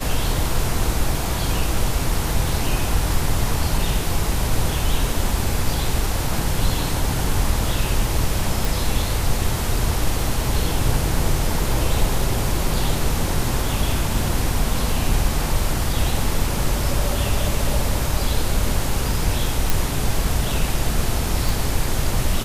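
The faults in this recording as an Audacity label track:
8.650000	8.650000	pop
19.700000	19.700000	pop
21.490000	21.490000	pop

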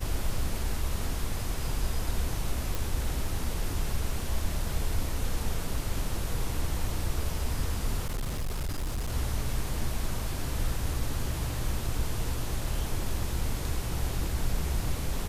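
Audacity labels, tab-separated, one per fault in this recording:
2.750000	2.750000	pop
8.050000	9.120000	clipped -27.5 dBFS

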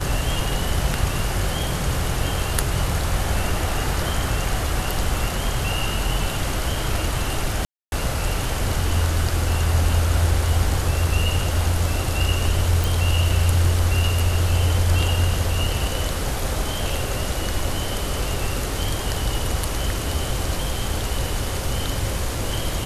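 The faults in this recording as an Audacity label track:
7.650000	7.920000	gap 0.271 s
12.840000	12.840000	pop

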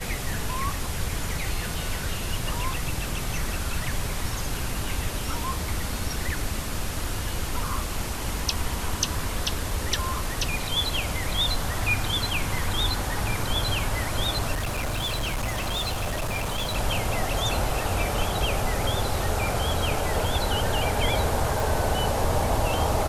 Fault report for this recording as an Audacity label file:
14.530000	16.760000	clipped -24 dBFS
21.600000	21.600000	pop

